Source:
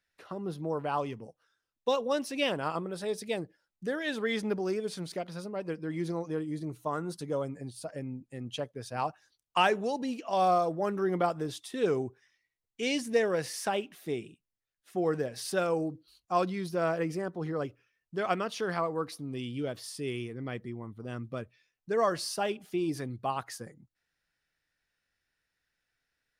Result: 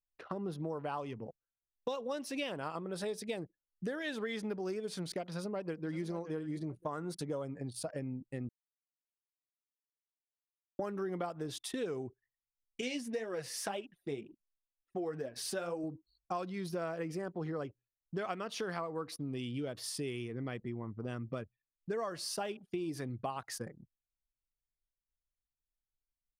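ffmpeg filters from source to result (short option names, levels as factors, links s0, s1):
-filter_complex "[0:a]asplit=2[s0][s1];[s1]afade=t=in:st=5.25:d=0.01,afade=t=out:st=6:d=0.01,aecho=0:1:570|1140|1710:0.251189|0.0502377|0.0100475[s2];[s0][s2]amix=inputs=2:normalize=0,asettb=1/sr,asplit=3[s3][s4][s5];[s3]atrim=end=12.814[s6];[s4]atrim=start=12.81:end=15.84,asetpts=PTS-STARTPTS,afade=t=in:d=0.004:c=qsin,afade=t=out:st=3.026:d=0.004:c=qsin,flanger=delay=3:depth=5.7:regen=28:speed=2:shape=sinusoidal[s7];[s5]atrim=start=15.836[s8];[s6][s7]acrossfade=d=0.004:c1=hsin:c2=qsin[s9];[s9][s8]acrossfade=d=0.004:c1=qsin:c2=hsin,asplit=3[s10][s11][s12];[s10]atrim=end=8.49,asetpts=PTS-STARTPTS,afade=t=out:st=8.486:d=0.004:c=hsin[s13];[s11]atrim=start=8.49:end=10.79,asetpts=PTS-STARTPTS,volume=0[s14];[s12]atrim=start=10.79,asetpts=PTS-STARTPTS,afade=t=in:d=0.004:c=hsin[s15];[s13][s14][s15]concat=n=3:v=0:a=1,anlmdn=0.00251,acompressor=threshold=0.0112:ratio=6,volume=1.5"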